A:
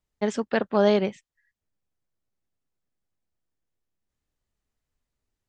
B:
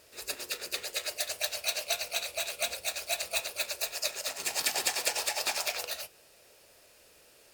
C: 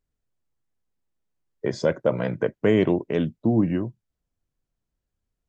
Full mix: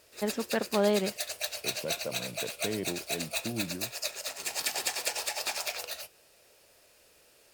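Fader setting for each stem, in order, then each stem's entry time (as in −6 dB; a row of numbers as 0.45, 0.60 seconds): −6.0, −2.0, −15.5 decibels; 0.00, 0.00, 0.00 seconds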